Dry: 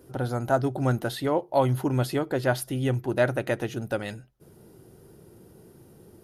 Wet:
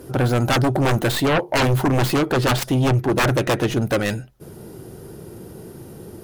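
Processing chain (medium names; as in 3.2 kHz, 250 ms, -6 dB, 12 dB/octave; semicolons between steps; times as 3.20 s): tracing distortion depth 0.27 ms; 2.32–3.87 s: treble shelf 12 kHz -8.5 dB; sine folder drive 15 dB, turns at -8.5 dBFS; trim -5.5 dB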